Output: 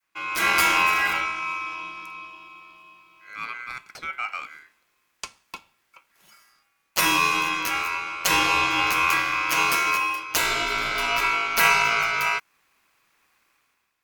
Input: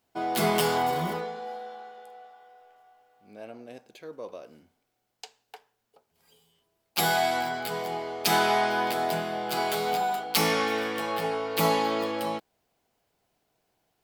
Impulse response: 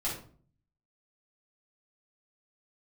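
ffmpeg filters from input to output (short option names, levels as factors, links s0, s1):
-af "dynaudnorm=f=130:g=7:m=3.76,adynamicequalizer=threshold=0.0224:dfrequency=1600:dqfactor=1:tfrequency=1600:tqfactor=1:attack=5:release=100:ratio=0.375:range=2:mode=cutabove:tftype=bell,aeval=exprs='val(0)*sin(2*PI*1800*n/s)':c=same"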